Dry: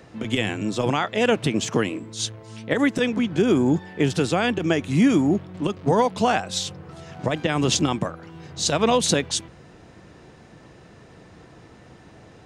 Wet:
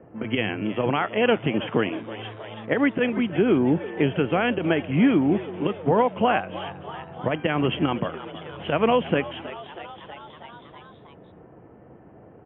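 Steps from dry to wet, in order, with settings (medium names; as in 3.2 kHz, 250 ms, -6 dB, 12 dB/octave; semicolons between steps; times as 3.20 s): level-controlled noise filter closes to 540 Hz, open at -18 dBFS; Chebyshev low-pass 3.2 kHz, order 10; bass shelf 69 Hz -9 dB; on a send: frequency-shifting echo 321 ms, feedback 62%, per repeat +93 Hz, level -16.5 dB; on the sum: tape noise reduction on one side only encoder only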